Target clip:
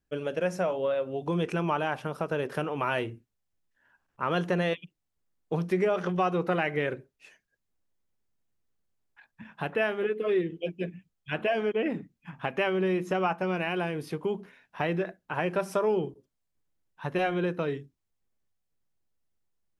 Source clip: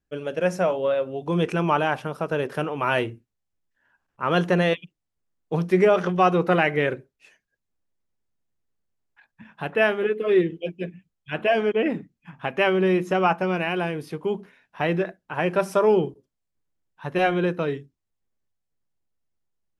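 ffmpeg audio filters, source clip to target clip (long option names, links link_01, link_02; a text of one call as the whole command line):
ffmpeg -i in.wav -af "acompressor=threshold=-29dB:ratio=2" out.wav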